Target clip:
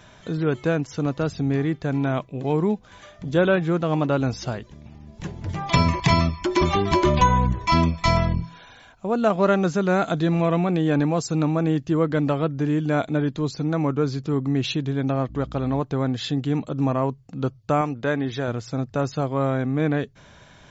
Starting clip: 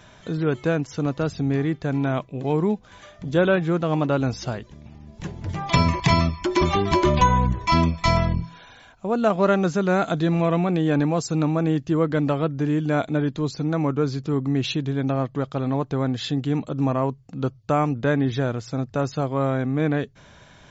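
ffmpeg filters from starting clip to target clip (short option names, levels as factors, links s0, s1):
-filter_complex "[0:a]asettb=1/sr,asplit=3[s0][s1][s2];[s0]atrim=end=15.294[s3];[s1]atrim=start=15.29:end=15.8,asetpts=PTS-STARTPTS,afade=t=in:d=0.004:c=qsin,afade=t=out:st=0.506:d=0.004:c=qsin,aeval=exprs='val(0)+0.0126*(sin(2*PI*60*n/s)+sin(2*PI*2*60*n/s)/2+sin(2*PI*3*60*n/s)/3+sin(2*PI*4*60*n/s)/4+sin(2*PI*5*60*n/s)/5)':c=same[s4];[s2]atrim=start=15.796[s5];[s3][s4]acrossfade=d=0.004:c1=hsin:c2=qsin[s6];[s6][s5]acrossfade=d=0.004:c1=qsin:c2=hsin,asettb=1/sr,asplit=3[s7][s8][s9];[s7]atrim=end=17.814[s10];[s8]atrim=start=17.81:end=18.48,asetpts=PTS-STARTPTS,afade=t=in:d=0.004:c=qsin,afade=t=out:st=0.666:d=0.004:c=qsin,lowshelf=f=250:g=-8[s11];[s9]atrim=start=18.476[s12];[s10][s11]acrossfade=d=0.004:c1=hsin:c2=qsin[s13];[s13][s12]acrossfade=d=0.004:c1=qsin:c2=hsin"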